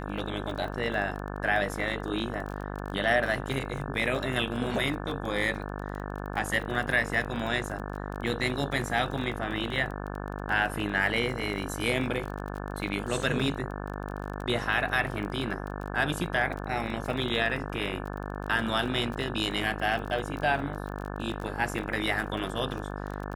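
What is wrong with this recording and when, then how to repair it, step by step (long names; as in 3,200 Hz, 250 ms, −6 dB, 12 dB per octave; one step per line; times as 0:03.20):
mains buzz 50 Hz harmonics 35 −36 dBFS
surface crackle 25 per second −34 dBFS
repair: click removal
hum removal 50 Hz, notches 35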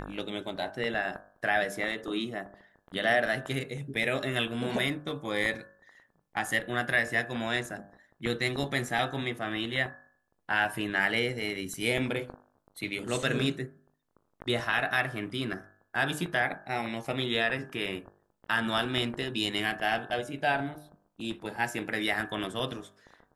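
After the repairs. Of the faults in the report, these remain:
none of them is left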